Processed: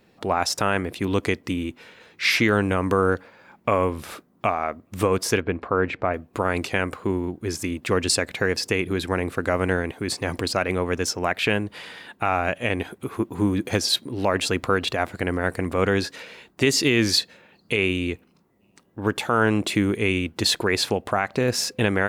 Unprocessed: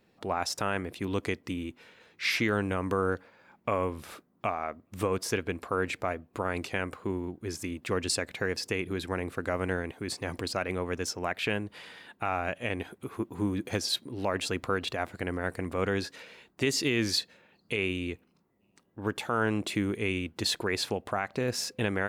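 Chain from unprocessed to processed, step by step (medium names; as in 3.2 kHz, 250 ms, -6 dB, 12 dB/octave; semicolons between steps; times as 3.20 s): 5.40–6.14 s: Bessel low-pass 2 kHz, order 2; trim +8 dB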